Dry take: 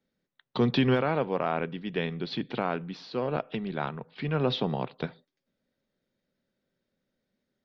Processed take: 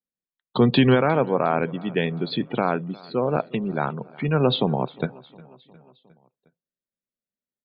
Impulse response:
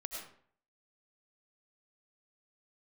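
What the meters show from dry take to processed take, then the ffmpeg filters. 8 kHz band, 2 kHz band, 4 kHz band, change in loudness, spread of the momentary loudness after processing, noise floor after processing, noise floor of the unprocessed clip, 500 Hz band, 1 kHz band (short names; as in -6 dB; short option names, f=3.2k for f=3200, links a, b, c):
n/a, +6.0 dB, +6.0 dB, +7.0 dB, 11 LU, under -85 dBFS, -84 dBFS, +7.0 dB, +7.0 dB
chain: -filter_complex "[0:a]afftdn=nr=27:nf=-39,asplit=2[a][b];[b]aecho=0:1:358|716|1074|1432:0.0708|0.0418|0.0246|0.0145[c];[a][c]amix=inputs=2:normalize=0,aresample=11025,aresample=44100,volume=7dB"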